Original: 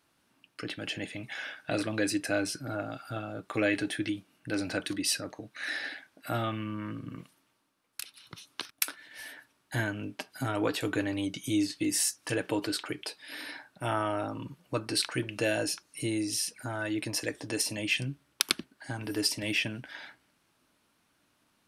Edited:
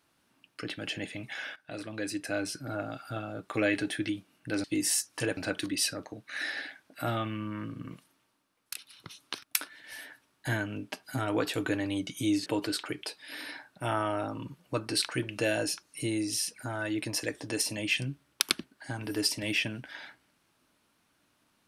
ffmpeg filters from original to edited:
ffmpeg -i in.wav -filter_complex "[0:a]asplit=5[link_01][link_02][link_03][link_04][link_05];[link_01]atrim=end=1.56,asetpts=PTS-STARTPTS,afade=type=out:start_time=1.556:duration=0.004:curve=hsin:silence=0.211349[link_06];[link_02]atrim=start=1.56:end=4.642,asetpts=PTS-STARTPTS,afade=type=in:duration=1.27:silence=0.211349[link_07];[link_03]atrim=start=11.728:end=12.462[link_08];[link_04]atrim=start=4.638:end=11.732[link_09];[link_05]atrim=start=12.458[link_10];[link_06][link_07]concat=n=2:v=0:a=1[link_11];[link_11][link_08]acrossfade=duration=0.004:curve1=hsin:curve2=hsin[link_12];[link_12][link_09]acrossfade=duration=0.004:curve1=hsin:curve2=hsin[link_13];[link_13][link_10]acrossfade=duration=0.004:curve1=hsin:curve2=hsin" out.wav

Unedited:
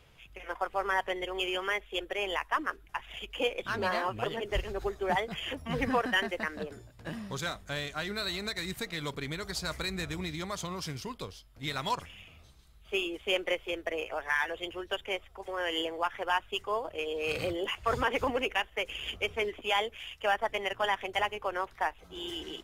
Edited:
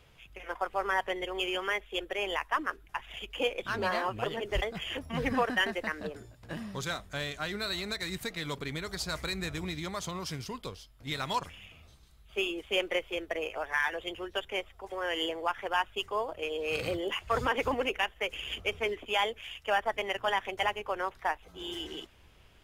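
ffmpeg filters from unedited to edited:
ffmpeg -i in.wav -filter_complex "[0:a]asplit=2[link_01][link_02];[link_01]atrim=end=4.622[link_03];[link_02]atrim=start=5.178[link_04];[link_03][link_04]acrossfade=duration=0.004:curve1=hsin:curve2=hsin" out.wav

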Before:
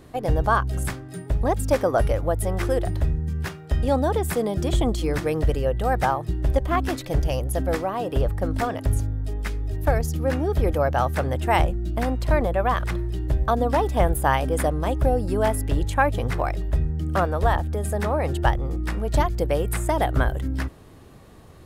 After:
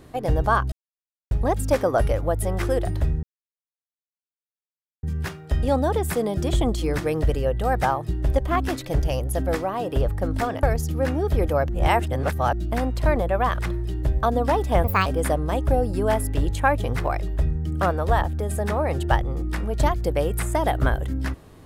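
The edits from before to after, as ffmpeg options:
ffmpeg -i in.wav -filter_complex "[0:a]asplit=9[link_01][link_02][link_03][link_04][link_05][link_06][link_07][link_08][link_09];[link_01]atrim=end=0.72,asetpts=PTS-STARTPTS,afade=type=out:start_time=0.716:duration=0.004:curve=hsin[link_10];[link_02]atrim=start=0.72:end=1.31,asetpts=PTS-STARTPTS,volume=0[link_11];[link_03]atrim=start=1.31:end=3.23,asetpts=PTS-STARTPTS,afade=type=in:duration=0.004:curve=hsin,afade=type=out:start_time=1.916:duration=0.004:curve=hsin,apad=pad_dur=1.8[link_12];[link_04]atrim=start=3.23:end=8.832,asetpts=PTS-STARTPTS,afade=type=in:duration=0.004:curve=hsin[link_13];[link_05]atrim=start=9.878:end=10.942[link_14];[link_06]atrim=start=10.938:end=11.782,asetpts=PTS-STARTPTS,areverse[link_15];[link_07]atrim=start=11.778:end=14.094[link_16];[link_08]atrim=start=14.09:end=14.4,asetpts=PTS-STARTPTS,asetrate=62622,aresample=44100,atrim=end_sample=9627,asetpts=PTS-STARTPTS[link_17];[link_09]atrim=start=14.396[link_18];[link_10][link_11][link_12][link_13]concat=n=4:v=0:a=1[link_19];[link_19][link_14]acrossfade=duration=0.004:curve1=hsin:curve2=hsin[link_20];[link_20][link_15]acrossfade=duration=0.004:curve1=hsin:curve2=hsin[link_21];[link_21][link_16]acrossfade=duration=0.004:curve1=hsin:curve2=hsin[link_22];[link_22][link_17]acrossfade=duration=0.004:curve1=hsin:curve2=hsin[link_23];[link_23][link_18]acrossfade=duration=0.004:curve1=hsin:curve2=hsin" out.wav

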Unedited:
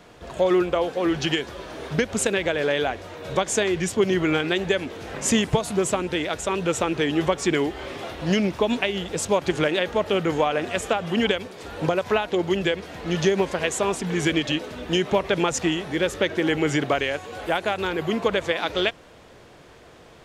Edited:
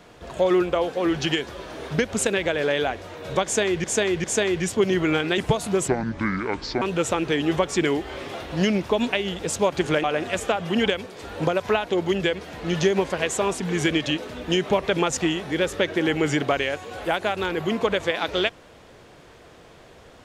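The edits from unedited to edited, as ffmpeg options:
ffmpeg -i in.wav -filter_complex "[0:a]asplit=7[link_01][link_02][link_03][link_04][link_05][link_06][link_07];[link_01]atrim=end=3.842[link_08];[link_02]atrim=start=3.438:end=3.842[link_09];[link_03]atrim=start=3.438:end=4.582[link_10];[link_04]atrim=start=5.418:end=5.924[link_11];[link_05]atrim=start=5.92:end=6.51,asetpts=PTS-STARTPTS,asetrate=27783,aresample=44100[link_12];[link_06]atrim=start=6.506:end=9.732[link_13];[link_07]atrim=start=10.448[link_14];[link_08][link_09]acrossfade=duration=0.004:curve1=hsin:curve2=hsin[link_15];[link_15][link_10]acrossfade=duration=0.004:curve1=hsin:curve2=hsin[link_16];[link_16][link_11]acrossfade=duration=0.004:curve1=hsin:curve2=hsin[link_17];[link_17][link_12]acrossfade=duration=0.004:curve1=hsin:curve2=hsin[link_18];[link_18][link_13]acrossfade=duration=0.004:curve1=hsin:curve2=hsin[link_19];[link_19][link_14]acrossfade=duration=0.004:curve1=hsin:curve2=hsin" out.wav

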